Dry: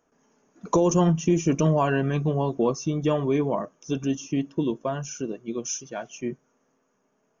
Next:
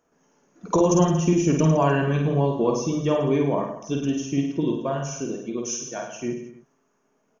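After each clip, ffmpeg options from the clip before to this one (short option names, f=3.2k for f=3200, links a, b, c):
-af "aecho=1:1:50|105|165.5|232|305.3:0.631|0.398|0.251|0.158|0.1"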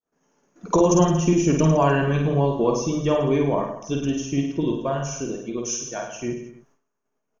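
-af "agate=range=-33dB:threshold=-58dB:ratio=3:detection=peak,asubboost=boost=4:cutoff=84,volume=2dB"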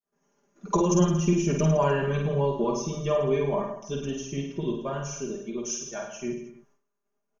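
-af "aecho=1:1:5:0.85,volume=-7dB"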